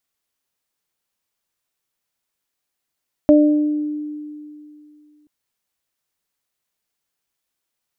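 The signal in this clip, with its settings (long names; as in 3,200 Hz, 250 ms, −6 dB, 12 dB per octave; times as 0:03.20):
harmonic partials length 1.98 s, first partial 299 Hz, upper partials −1.5 dB, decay 2.64 s, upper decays 0.77 s, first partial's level −8 dB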